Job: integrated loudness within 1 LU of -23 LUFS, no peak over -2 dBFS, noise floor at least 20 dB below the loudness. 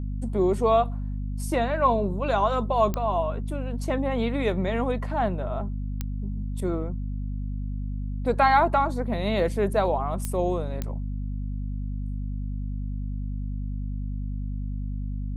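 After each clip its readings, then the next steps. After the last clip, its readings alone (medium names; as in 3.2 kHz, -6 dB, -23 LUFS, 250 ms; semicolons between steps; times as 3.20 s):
clicks found 4; hum 50 Hz; highest harmonic 250 Hz; hum level -27 dBFS; loudness -27.0 LUFS; peak level -8.5 dBFS; loudness target -23.0 LUFS
-> de-click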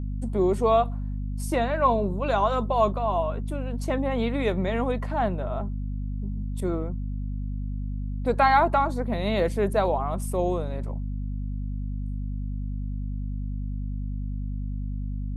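clicks found 0; hum 50 Hz; highest harmonic 250 Hz; hum level -27 dBFS
-> hum notches 50/100/150/200/250 Hz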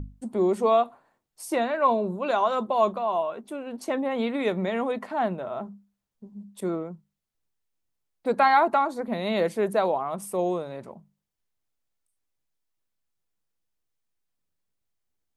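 hum not found; loudness -26.0 LUFS; peak level -9.5 dBFS; loudness target -23.0 LUFS
-> trim +3 dB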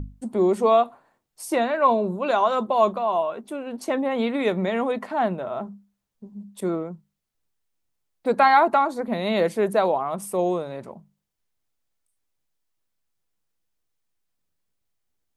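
loudness -23.0 LUFS; peak level -6.5 dBFS; noise floor -78 dBFS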